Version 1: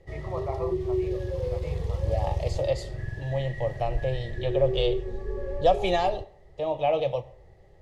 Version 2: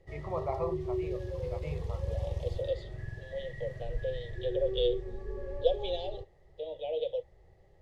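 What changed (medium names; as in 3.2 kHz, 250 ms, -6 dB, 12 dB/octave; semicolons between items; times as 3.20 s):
second voice: add two resonant band-passes 1.3 kHz, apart 2.8 oct; background -6.5 dB; reverb: off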